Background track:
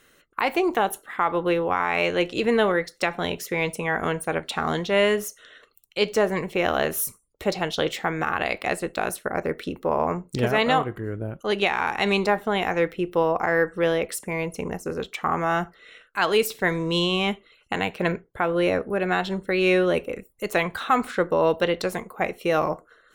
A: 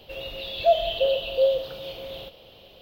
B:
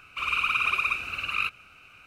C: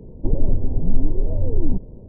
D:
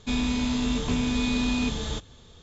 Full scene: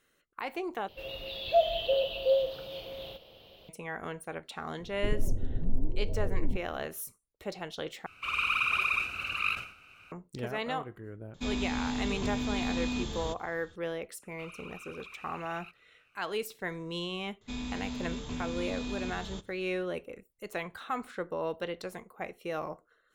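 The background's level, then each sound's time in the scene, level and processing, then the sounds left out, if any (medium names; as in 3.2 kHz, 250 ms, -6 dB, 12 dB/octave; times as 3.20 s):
background track -13.5 dB
0.88 s: replace with A -5 dB
4.79 s: add C -11 dB
8.06 s: replace with B -3.5 dB + decay stretcher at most 110 dB/s
11.34 s: add D -7 dB
14.22 s: add B -16.5 dB + peak limiter -24 dBFS
17.41 s: add D -11.5 dB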